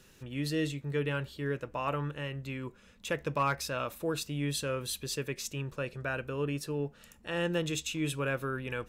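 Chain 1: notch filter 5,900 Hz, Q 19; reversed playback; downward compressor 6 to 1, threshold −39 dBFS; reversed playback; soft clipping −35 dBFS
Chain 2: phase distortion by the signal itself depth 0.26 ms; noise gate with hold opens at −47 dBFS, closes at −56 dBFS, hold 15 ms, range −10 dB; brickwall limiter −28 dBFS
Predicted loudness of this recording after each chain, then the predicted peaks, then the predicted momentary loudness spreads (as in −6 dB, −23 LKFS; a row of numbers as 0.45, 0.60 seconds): −44.0, −38.5 LKFS; −35.5, −28.0 dBFS; 4, 4 LU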